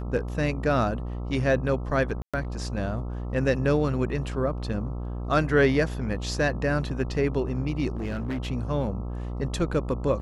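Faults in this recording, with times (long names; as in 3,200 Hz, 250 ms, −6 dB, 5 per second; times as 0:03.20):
mains buzz 60 Hz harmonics 22 −32 dBFS
0:02.22–0:02.34: drop-out 116 ms
0:07.96–0:08.47: clipping −26 dBFS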